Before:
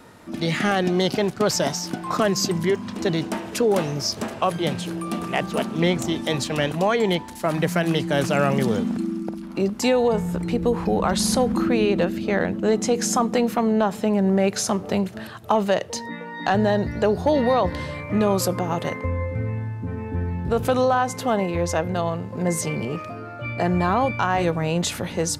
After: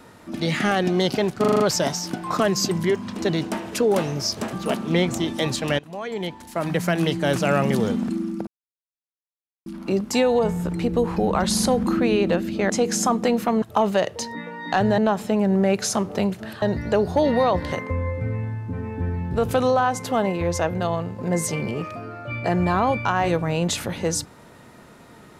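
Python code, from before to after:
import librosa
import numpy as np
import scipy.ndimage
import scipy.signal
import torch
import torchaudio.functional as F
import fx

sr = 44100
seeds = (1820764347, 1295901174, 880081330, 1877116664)

y = fx.edit(x, sr, fx.stutter(start_s=1.4, slice_s=0.04, count=6),
    fx.cut(start_s=4.33, length_s=1.08),
    fx.fade_in_from(start_s=6.67, length_s=1.14, floor_db=-20.5),
    fx.insert_silence(at_s=9.35, length_s=1.19),
    fx.cut(start_s=12.39, length_s=0.41),
    fx.move(start_s=15.36, length_s=1.36, to_s=13.72),
    fx.cut(start_s=17.82, length_s=1.04), tone=tone)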